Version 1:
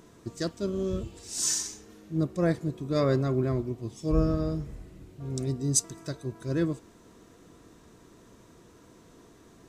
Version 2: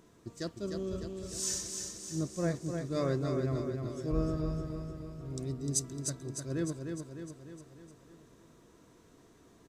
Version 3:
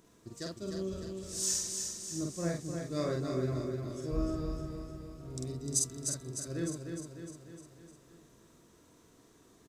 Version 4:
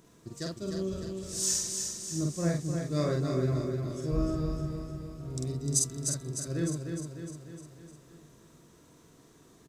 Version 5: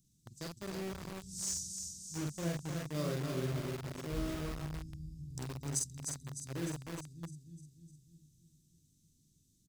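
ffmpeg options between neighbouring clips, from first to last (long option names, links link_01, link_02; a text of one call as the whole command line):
ffmpeg -i in.wav -af "aecho=1:1:303|606|909|1212|1515|1818|2121:0.531|0.297|0.166|0.0932|0.0522|0.0292|0.0164,volume=-7dB" out.wav
ffmpeg -i in.wav -filter_complex "[0:a]highshelf=frequency=4100:gain=6.5,asplit=2[link_01][link_02];[link_02]adelay=47,volume=-2.5dB[link_03];[link_01][link_03]amix=inputs=2:normalize=0,volume=-4dB" out.wav
ffmpeg -i in.wav -af "equalizer=frequency=150:width_type=o:width=0.33:gain=7,volume=3dB" out.wav
ffmpeg -i in.wav -filter_complex "[0:a]acrossover=split=210|3900[link_01][link_02][link_03];[link_01]aecho=1:1:594:0.501[link_04];[link_02]acrusher=bits=5:mix=0:aa=0.000001[link_05];[link_04][link_05][link_03]amix=inputs=3:normalize=0,volume=-8dB" out.wav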